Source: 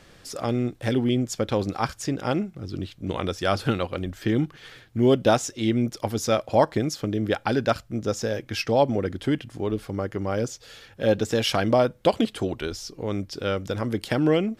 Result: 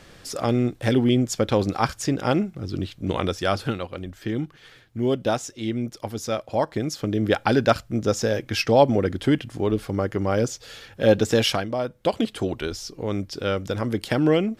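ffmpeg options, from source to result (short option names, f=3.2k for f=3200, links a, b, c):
-af "volume=22dB,afade=t=out:st=3.19:d=0.59:silence=0.421697,afade=t=in:st=6.66:d=0.7:silence=0.398107,afade=t=out:st=11.42:d=0.26:silence=0.223872,afade=t=in:st=11.68:d=0.81:silence=0.298538"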